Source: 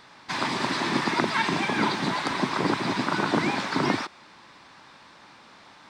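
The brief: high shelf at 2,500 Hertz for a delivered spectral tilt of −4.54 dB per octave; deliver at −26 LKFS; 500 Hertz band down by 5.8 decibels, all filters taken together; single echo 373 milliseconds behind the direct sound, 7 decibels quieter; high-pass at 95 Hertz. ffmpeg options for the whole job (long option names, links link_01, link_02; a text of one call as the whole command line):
ffmpeg -i in.wav -af "highpass=95,equalizer=frequency=500:width_type=o:gain=-8.5,highshelf=frequency=2500:gain=-4,aecho=1:1:373:0.447,volume=1.5dB" out.wav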